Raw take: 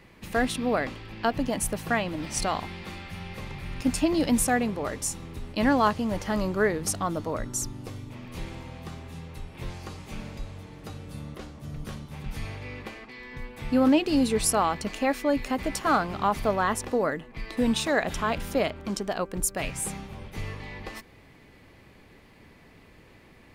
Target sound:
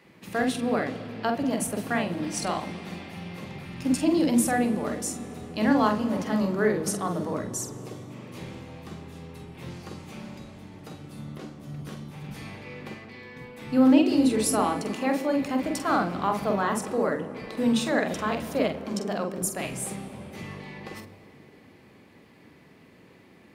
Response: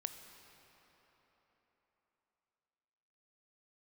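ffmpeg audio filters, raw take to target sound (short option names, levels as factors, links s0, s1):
-filter_complex "[0:a]highpass=190,asplit=2[s0][s1];[s1]lowshelf=f=440:g=11.5[s2];[1:a]atrim=start_sample=2205,lowshelf=f=430:g=6,adelay=46[s3];[s2][s3]afir=irnorm=-1:irlink=0,volume=0.501[s4];[s0][s4]amix=inputs=2:normalize=0,volume=0.75"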